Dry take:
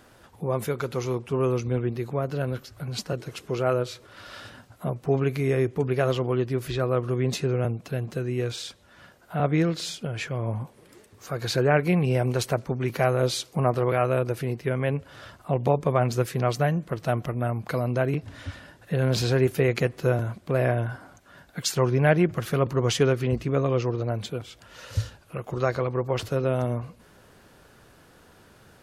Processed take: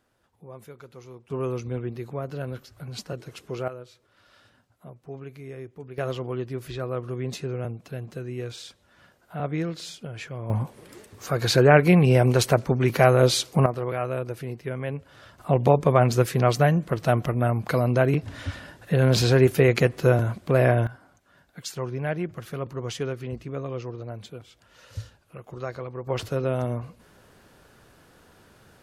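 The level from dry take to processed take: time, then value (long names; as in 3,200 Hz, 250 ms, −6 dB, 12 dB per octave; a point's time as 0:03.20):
−16.5 dB
from 0:01.30 −4.5 dB
from 0:03.68 −15.5 dB
from 0:05.98 −5.5 dB
from 0:10.50 +5.5 dB
from 0:13.66 −5 dB
from 0:15.38 +4 dB
from 0:20.87 −8.5 dB
from 0:26.07 −1 dB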